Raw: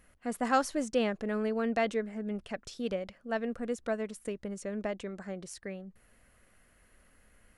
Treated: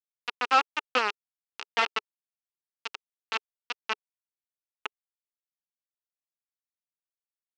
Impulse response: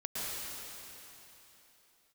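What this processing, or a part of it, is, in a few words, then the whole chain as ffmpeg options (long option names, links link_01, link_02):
hand-held game console: -filter_complex "[0:a]asettb=1/sr,asplit=3[link_01][link_02][link_03];[link_01]atrim=end=1.284[link_04];[link_02]atrim=start=1.28:end=1.82,asetpts=PTS-STARTPTS,afade=type=in:duration=0.004:curve=qsin,afade=type=out:start_time=0.536:duration=0.004:curve=qsin,highpass=71[link_05];[link_03]atrim=start=1.816[link_06];[link_04][link_05]acrossfade=duration=0.004:curve1=hsin:curve2=qsin[link_07];[link_07][link_06]acrossfade=duration=0.004:curve1=qsin:curve2=hsin,acrusher=bits=3:mix=0:aa=0.000001,highpass=410,equalizer=frequency=420:width_type=q:width=4:gain=4,equalizer=frequency=610:width_type=q:width=4:gain=-7,equalizer=frequency=880:width_type=q:width=4:gain=5,equalizer=frequency=1300:width_type=q:width=4:gain=7,equalizer=frequency=2700:width_type=q:width=4:gain=10,lowpass=frequency=5300:width=0.5412,lowpass=frequency=5300:width=1.3066"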